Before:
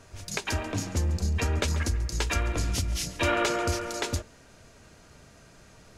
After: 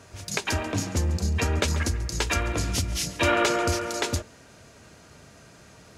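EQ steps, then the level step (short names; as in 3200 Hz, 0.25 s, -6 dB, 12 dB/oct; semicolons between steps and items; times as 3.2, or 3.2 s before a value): HPF 69 Hz; +3.5 dB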